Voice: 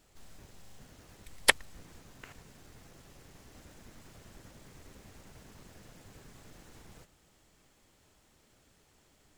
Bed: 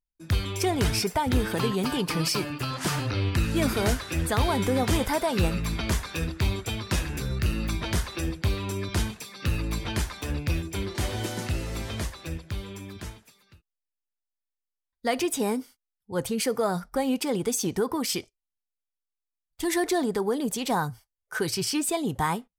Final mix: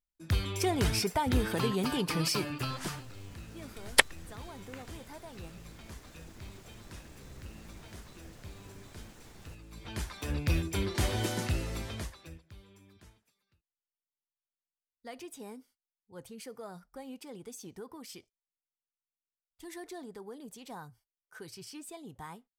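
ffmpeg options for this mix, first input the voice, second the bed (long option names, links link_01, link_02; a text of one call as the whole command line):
ffmpeg -i stem1.wav -i stem2.wav -filter_complex "[0:a]adelay=2500,volume=1dB[link_01];[1:a]volume=17dB,afade=type=out:start_time=2.65:duration=0.4:silence=0.125893,afade=type=in:start_time=9.71:duration=0.86:silence=0.0891251,afade=type=out:start_time=11.34:duration=1.09:silence=0.125893[link_02];[link_01][link_02]amix=inputs=2:normalize=0" out.wav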